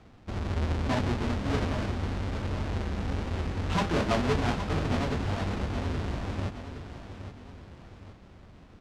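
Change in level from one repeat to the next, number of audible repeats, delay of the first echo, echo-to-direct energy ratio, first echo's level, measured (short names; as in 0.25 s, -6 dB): -6.5 dB, 3, 0.818 s, -9.5 dB, -10.5 dB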